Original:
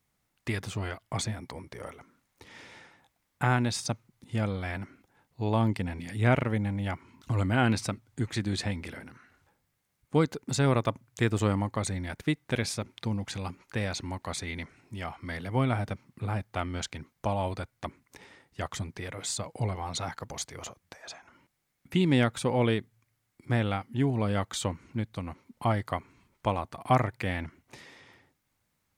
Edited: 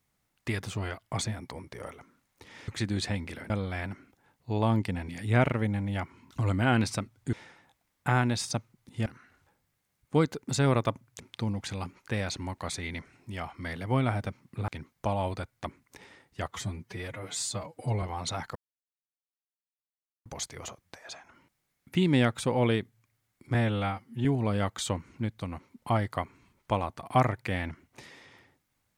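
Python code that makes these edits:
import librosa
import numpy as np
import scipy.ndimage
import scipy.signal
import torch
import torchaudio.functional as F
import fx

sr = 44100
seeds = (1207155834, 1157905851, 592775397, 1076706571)

y = fx.edit(x, sr, fx.swap(start_s=2.68, length_s=1.73, other_s=8.24, other_length_s=0.82),
    fx.cut(start_s=11.2, length_s=1.64),
    fx.cut(start_s=16.32, length_s=0.56),
    fx.stretch_span(start_s=18.68, length_s=1.03, factor=1.5),
    fx.insert_silence(at_s=20.24, length_s=1.7),
    fx.stretch_span(start_s=23.53, length_s=0.47, factor=1.5), tone=tone)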